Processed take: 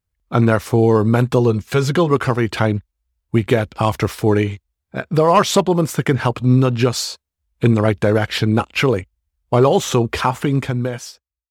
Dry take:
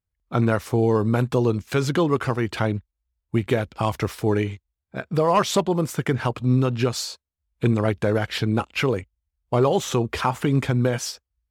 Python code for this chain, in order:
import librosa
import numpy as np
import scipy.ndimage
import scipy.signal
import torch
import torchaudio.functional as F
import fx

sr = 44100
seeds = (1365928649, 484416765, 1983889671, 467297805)

y = fx.fade_out_tail(x, sr, length_s=1.42)
y = fx.notch_comb(y, sr, f0_hz=300.0, at=(1.39, 2.11))
y = y * librosa.db_to_amplitude(6.0)